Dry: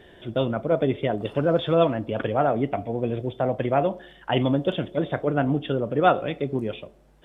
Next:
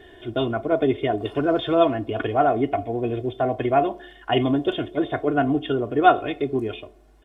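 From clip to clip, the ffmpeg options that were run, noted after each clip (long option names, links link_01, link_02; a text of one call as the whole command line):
ffmpeg -i in.wav -af "aecho=1:1:2.8:0.8" out.wav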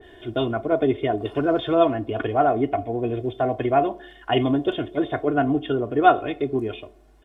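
ffmpeg -i in.wav -af "adynamicequalizer=threshold=0.0158:dfrequency=1900:dqfactor=0.7:tfrequency=1900:tqfactor=0.7:attack=5:release=100:ratio=0.375:range=2:mode=cutabove:tftype=highshelf" out.wav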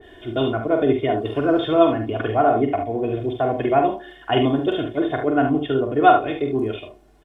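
ffmpeg -i in.wav -af "aecho=1:1:45|72:0.473|0.376,volume=1dB" out.wav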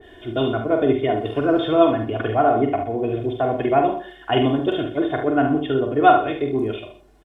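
ffmpeg -i in.wav -af "aecho=1:1:124:0.178" out.wav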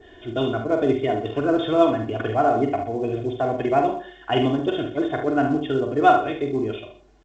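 ffmpeg -i in.wav -af "volume=-2dB" -ar 16000 -c:a pcm_alaw out.wav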